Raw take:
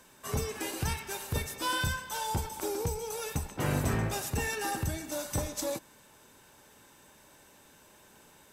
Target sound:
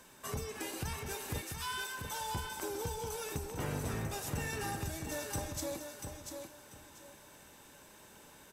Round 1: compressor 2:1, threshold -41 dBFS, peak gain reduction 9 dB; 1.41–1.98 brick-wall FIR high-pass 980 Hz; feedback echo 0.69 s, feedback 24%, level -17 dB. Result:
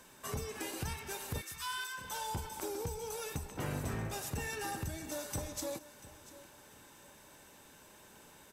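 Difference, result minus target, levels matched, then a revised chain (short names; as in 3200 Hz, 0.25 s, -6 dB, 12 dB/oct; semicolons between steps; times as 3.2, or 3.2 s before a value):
echo-to-direct -11 dB
compressor 2:1, threshold -41 dBFS, peak gain reduction 9 dB; 1.41–1.98 brick-wall FIR high-pass 980 Hz; feedback echo 0.69 s, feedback 24%, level -6 dB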